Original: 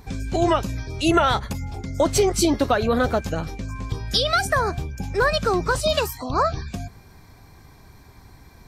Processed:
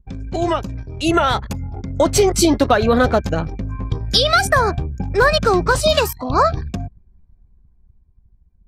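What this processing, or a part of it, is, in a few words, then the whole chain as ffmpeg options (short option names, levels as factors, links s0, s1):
voice memo with heavy noise removal: -af "anlmdn=10,dynaudnorm=f=230:g=11:m=3.76"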